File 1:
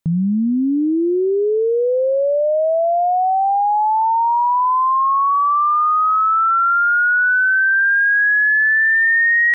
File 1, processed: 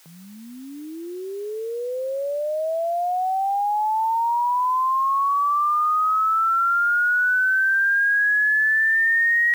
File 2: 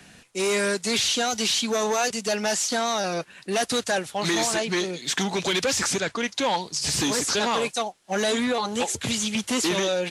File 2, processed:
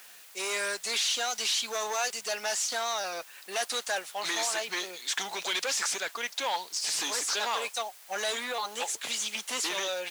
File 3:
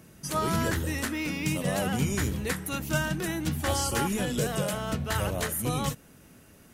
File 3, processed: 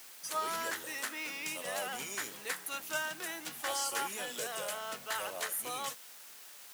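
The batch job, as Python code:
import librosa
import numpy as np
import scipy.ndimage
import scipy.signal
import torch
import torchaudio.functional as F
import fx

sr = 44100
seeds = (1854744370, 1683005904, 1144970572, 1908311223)

p1 = fx.quant_dither(x, sr, seeds[0], bits=6, dither='triangular')
p2 = x + (p1 * 10.0 ** (-9.0 / 20.0))
p3 = scipy.signal.sosfilt(scipy.signal.butter(2, 680.0, 'highpass', fs=sr, output='sos'), p2)
y = p3 * 10.0 ** (-7.0 / 20.0)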